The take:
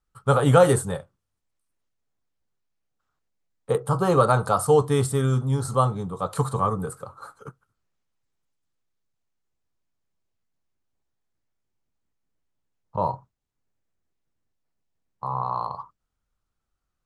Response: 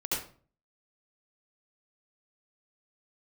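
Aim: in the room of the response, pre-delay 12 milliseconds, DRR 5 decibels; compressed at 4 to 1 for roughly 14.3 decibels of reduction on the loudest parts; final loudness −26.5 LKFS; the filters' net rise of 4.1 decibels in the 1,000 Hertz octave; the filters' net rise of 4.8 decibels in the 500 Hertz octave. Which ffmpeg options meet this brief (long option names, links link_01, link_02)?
-filter_complex "[0:a]equalizer=frequency=500:width_type=o:gain=4.5,equalizer=frequency=1000:width_type=o:gain=4,acompressor=threshold=-24dB:ratio=4,asplit=2[link_01][link_02];[1:a]atrim=start_sample=2205,adelay=12[link_03];[link_02][link_03]afir=irnorm=-1:irlink=0,volume=-11dB[link_04];[link_01][link_04]amix=inputs=2:normalize=0,volume=1dB"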